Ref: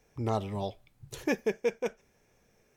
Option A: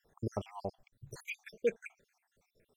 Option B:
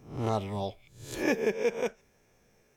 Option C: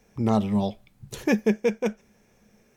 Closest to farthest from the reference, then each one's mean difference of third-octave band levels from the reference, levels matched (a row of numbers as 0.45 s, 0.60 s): C, B, A; 2.5 dB, 5.0 dB, 10.5 dB